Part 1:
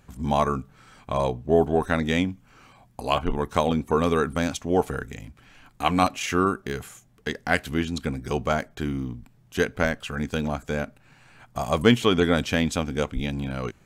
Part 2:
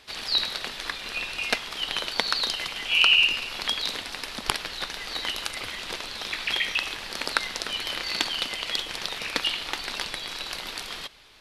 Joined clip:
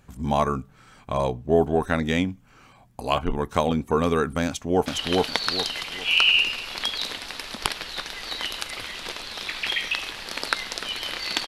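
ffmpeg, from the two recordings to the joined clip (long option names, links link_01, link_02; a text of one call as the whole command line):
ffmpeg -i cue0.wav -i cue1.wav -filter_complex "[0:a]apad=whole_dur=11.47,atrim=end=11.47,atrim=end=4.862[link_01];[1:a]atrim=start=1.698:end=8.31[link_02];[link_01][link_02]acrossfade=duration=0.004:curve1=hsin:curve2=hsin,asplit=2[link_03][link_04];[link_04]afade=type=in:start_time=4.46:duration=0.01,afade=type=out:start_time=4.86:duration=0.01,aecho=0:1:410|820|1230|1640:0.891251|0.267375|0.0802126|0.0240638[link_05];[link_03][link_05]amix=inputs=2:normalize=0" out.wav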